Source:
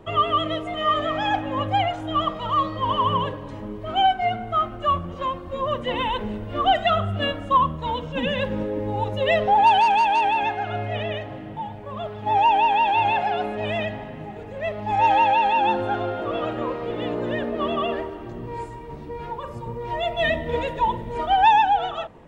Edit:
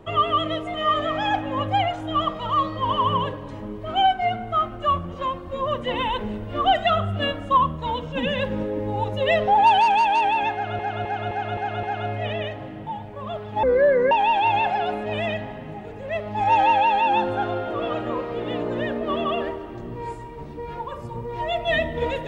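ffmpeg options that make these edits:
-filter_complex "[0:a]asplit=8[a][b][c][d][e][f][g][h];[a]atrim=end=10.792[i];[b]atrim=start=10.528:end=10.792[j];[c]atrim=start=10.528:end=10.792[k];[d]atrim=start=10.528:end=10.792[l];[e]atrim=start=10.528:end=10.792[m];[f]atrim=start=10.528:end=12.334[n];[g]atrim=start=12.33:end=12.63,asetpts=PTS-STARTPTS,asetrate=27342,aresample=44100[o];[h]atrim=start=12.626[p];[i][j]acrossfade=d=0.004:c1=hsin:c2=hsin[q];[q][k]acrossfade=d=0.004:c1=hsin:c2=hsin[r];[r][l]acrossfade=d=0.004:c1=hsin:c2=hsin[s];[s][m]acrossfade=d=0.004:c1=hsin:c2=hsin[t];[t][n]acrossfade=d=0.004:c1=hsin:c2=hsin[u];[u][o]acrossfade=d=0.004:c1=hsin:c2=hsin[v];[v][p]acrossfade=d=0.004:c1=hsin:c2=hsin"

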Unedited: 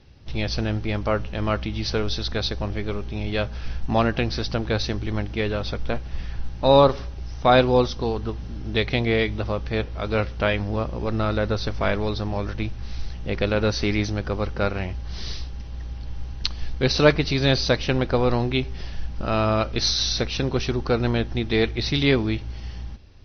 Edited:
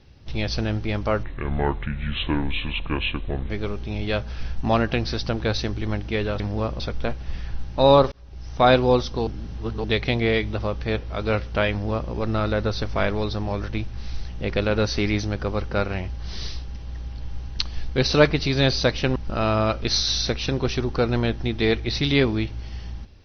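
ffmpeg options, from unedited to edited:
-filter_complex "[0:a]asplit=9[a][b][c][d][e][f][g][h][i];[a]atrim=end=1.234[j];[b]atrim=start=1.23:end=2.75,asetpts=PTS-STARTPTS,asetrate=29547,aresample=44100[k];[c]atrim=start=2.746:end=5.652[l];[d]atrim=start=10.558:end=10.962[m];[e]atrim=start=5.648:end=6.97,asetpts=PTS-STARTPTS,afade=t=out:st=1.318:d=0.004:c=hsin[n];[f]atrim=start=6.97:end=8.122,asetpts=PTS-STARTPTS,afade=t=in:d=0.44[o];[g]atrim=start=8.118:end=8.692,asetpts=PTS-STARTPTS,areverse[p];[h]atrim=start=8.688:end=18.012[q];[i]atrim=start=19.068[r];[j][k]acrossfade=d=0.004:c1=hsin:c2=hsin[s];[s][l]acrossfade=d=0.004:c1=hsin:c2=hsin[t];[t][m]acrossfade=d=0.004:c1=hsin:c2=hsin[u];[n][o]concat=n=2:v=0:a=1[v];[u][v]acrossfade=d=0.004:c1=hsin:c2=hsin[w];[w][p]acrossfade=d=0.004:c1=hsin:c2=hsin[x];[x][q]acrossfade=d=0.004:c1=hsin:c2=hsin[y];[y][r]acrossfade=d=0.004:c1=hsin:c2=hsin"

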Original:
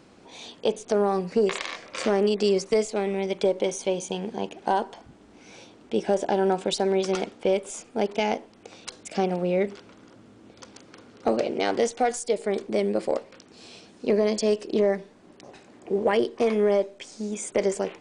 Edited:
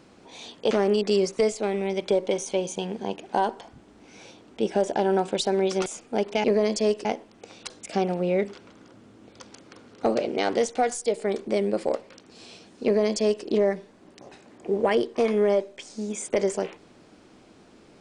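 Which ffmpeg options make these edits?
-filter_complex "[0:a]asplit=5[a][b][c][d][e];[a]atrim=end=0.712[f];[b]atrim=start=2.038:end=7.192[g];[c]atrim=start=7.688:end=8.272[h];[d]atrim=start=14.058:end=14.672[i];[e]atrim=start=8.268[j];[f][g]acrossfade=d=0.004:c1=hsin:c2=hsin[k];[k][h]acrossfade=d=0.004:c1=hsin:c2=hsin[l];[l][i]acrossfade=d=0.004:c1=hsin:c2=hsin[m];[m][j]acrossfade=d=0.004:c1=hsin:c2=hsin"

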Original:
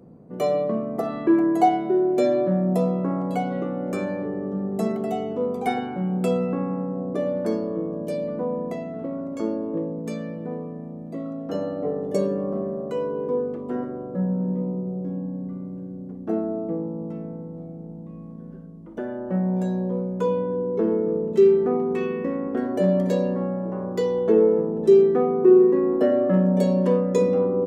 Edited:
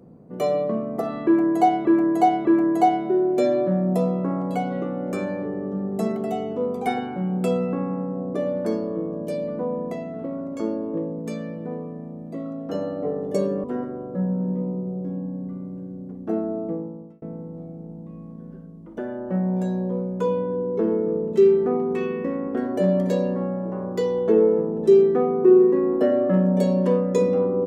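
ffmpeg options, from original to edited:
-filter_complex "[0:a]asplit=5[a][b][c][d][e];[a]atrim=end=1.852[f];[b]atrim=start=1.248:end=1.852[g];[c]atrim=start=1.248:end=12.442[h];[d]atrim=start=13.638:end=17.22,asetpts=PTS-STARTPTS,afade=t=out:st=3.052:d=0.53[i];[e]atrim=start=17.22,asetpts=PTS-STARTPTS,afade=t=in:d=0.004:c=hsin[j];[f][g]acrossfade=d=0.004:c1=hsin:c2=hsin[k];[k][h]acrossfade=d=0.004:c1=hsin:c2=hsin[l];[i][j]concat=n=2:v=0:a=1[m];[l][m]acrossfade=d=0.004:c1=hsin:c2=hsin"

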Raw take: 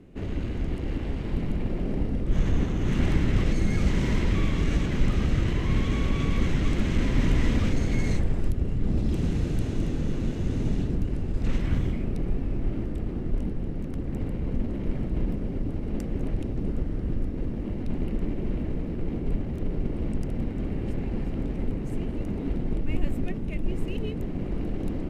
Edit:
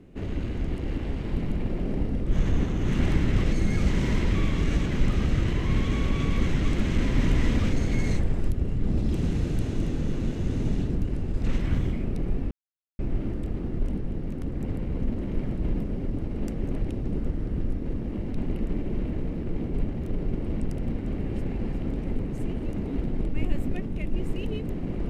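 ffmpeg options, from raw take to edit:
-filter_complex "[0:a]asplit=2[a][b];[a]atrim=end=12.51,asetpts=PTS-STARTPTS,afade=t=out:st=12.506:d=0.004:c=hsin,apad=pad_dur=0.48[c];[b]atrim=start=12.51,asetpts=PTS-STARTPTS,afade=t=in:d=0.004:c=hsin[d];[c][d]concat=n=2:v=0:a=1"

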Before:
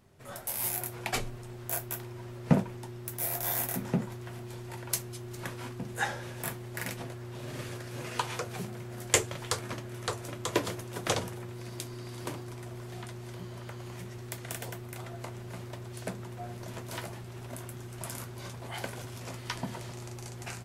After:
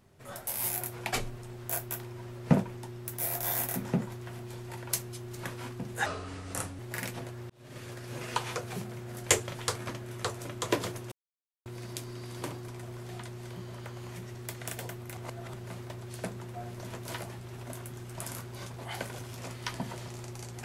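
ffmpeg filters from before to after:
-filter_complex "[0:a]asplit=8[a][b][c][d][e][f][g][h];[a]atrim=end=6.064[i];[b]atrim=start=6.06:end=6.62,asetpts=PTS-STARTPTS,asetrate=33957,aresample=44100[j];[c]atrim=start=6.616:end=7.33,asetpts=PTS-STARTPTS,afade=t=out:st=0.71:d=0.004:c=hsin[k];[d]atrim=start=7.33:end=10.95,asetpts=PTS-STARTPTS,afade=t=in:d=0.79:c=qsin,afade=t=out:st=3.616:d=0.004:c=hsin[l];[e]atrim=start=10.95:end=11.49,asetpts=PTS-STARTPTS,volume=0[m];[f]atrim=start=11.49:end=15.002,asetpts=PTS-STARTPTS,afade=t=in:d=0.004:c=hsin[n];[g]atrim=start=14.998:end=15.372,asetpts=PTS-STARTPTS,areverse[o];[h]atrim=start=15.368[p];[i][j]acrossfade=d=0.004:c1=hsin:c2=hsin[q];[k][l][m][n]concat=n=4:v=0:a=1[r];[q][r]acrossfade=d=0.004:c1=hsin:c2=hsin[s];[s][o]acrossfade=d=0.004:c1=hsin:c2=hsin[t];[t][p]acrossfade=d=0.004:c1=hsin:c2=hsin"

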